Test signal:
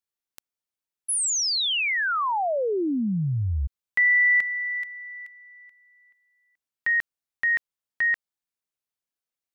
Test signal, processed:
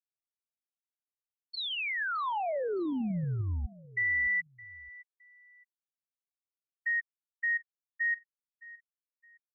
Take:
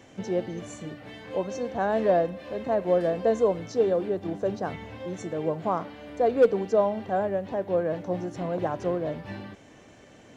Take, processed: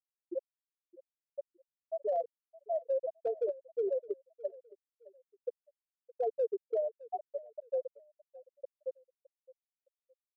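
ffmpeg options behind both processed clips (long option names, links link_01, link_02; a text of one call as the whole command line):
ffmpeg -i in.wav -filter_complex "[0:a]afftfilt=real='re*gte(hypot(re,im),0.631)':imag='im*gte(hypot(re,im),0.631)':win_size=1024:overlap=0.75,acompressor=threshold=-22dB:ratio=6:attack=0.12:release=119:knee=1:detection=peak,asplit=2[link_01][link_02];[link_02]aecho=0:1:615|1230:0.1|0.03[link_03];[link_01][link_03]amix=inputs=2:normalize=0,volume=-4.5dB" out.wav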